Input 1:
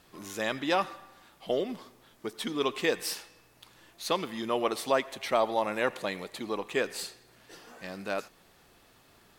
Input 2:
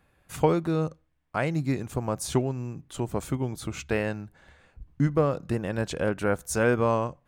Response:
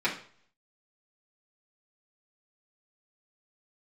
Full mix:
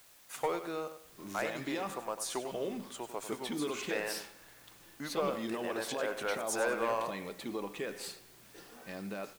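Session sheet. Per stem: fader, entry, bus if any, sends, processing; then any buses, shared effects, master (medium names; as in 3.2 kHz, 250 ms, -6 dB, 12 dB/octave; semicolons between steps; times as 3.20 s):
-6.5 dB, 1.05 s, send -18 dB, no echo send, bass shelf 490 Hz +5.5 dB; peak limiter -22.5 dBFS, peak gain reduction 12 dB
-4.0 dB, 0.00 s, no send, echo send -10.5 dB, high-pass 560 Hz 12 dB/octave; saturation -19.5 dBFS, distortion -15 dB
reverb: on, RT60 0.50 s, pre-delay 3 ms
echo: feedback delay 97 ms, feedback 29%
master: word length cut 10-bit, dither triangular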